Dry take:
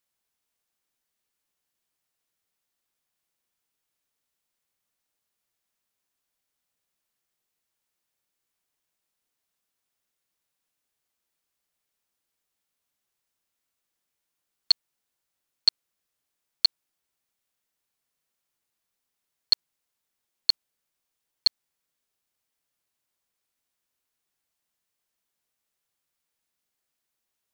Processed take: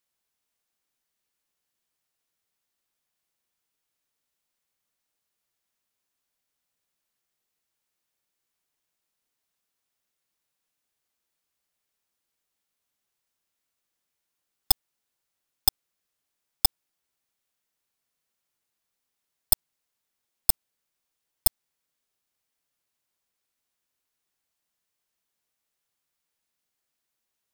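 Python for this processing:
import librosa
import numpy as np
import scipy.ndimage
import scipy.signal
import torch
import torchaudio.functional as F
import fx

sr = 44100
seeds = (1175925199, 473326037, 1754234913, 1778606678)

y = fx.tracing_dist(x, sr, depth_ms=0.34)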